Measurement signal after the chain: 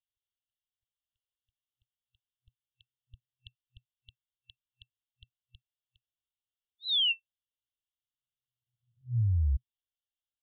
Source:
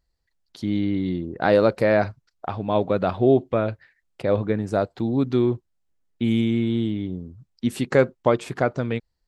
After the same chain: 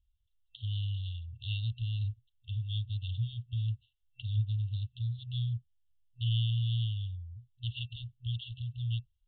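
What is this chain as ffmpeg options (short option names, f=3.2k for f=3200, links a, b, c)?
-filter_complex "[0:a]afftfilt=real='re*(1-between(b*sr/4096,120,2700))':imag='im*(1-between(b*sr/4096,120,2700))':win_size=4096:overlap=0.75,acrossover=split=230|3000[a][b][c];[b]acompressor=threshold=-29dB:ratio=6[d];[a][d][c]amix=inputs=3:normalize=0,aresample=8000,aresample=44100"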